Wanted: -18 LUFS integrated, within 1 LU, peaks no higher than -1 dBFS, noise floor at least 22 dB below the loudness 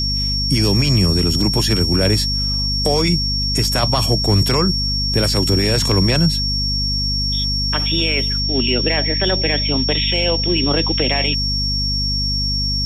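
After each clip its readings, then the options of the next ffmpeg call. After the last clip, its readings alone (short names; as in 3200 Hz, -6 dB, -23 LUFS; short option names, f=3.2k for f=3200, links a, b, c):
hum 50 Hz; harmonics up to 250 Hz; hum level -20 dBFS; steady tone 5500 Hz; tone level -19 dBFS; loudness -16.5 LUFS; peak -4.0 dBFS; loudness target -18.0 LUFS
-> -af "bandreject=f=50:t=h:w=6,bandreject=f=100:t=h:w=6,bandreject=f=150:t=h:w=6,bandreject=f=200:t=h:w=6,bandreject=f=250:t=h:w=6"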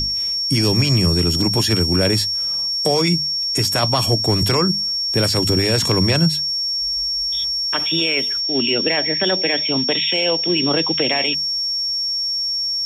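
hum none; steady tone 5500 Hz; tone level -19 dBFS
-> -af "bandreject=f=5.5k:w=30"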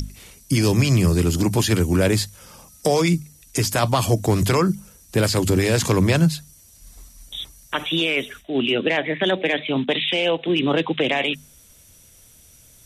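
steady tone none; loudness -20.5 LUFS; peak -5.0 dBFS; loudness target -18.0 LUFS
-> -af "volume=2.5dB"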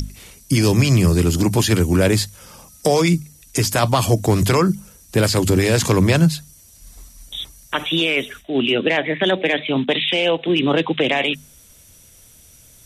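loudness -18.0 LUFS; peak -2.5 dBFS; noise floor -48 dBFS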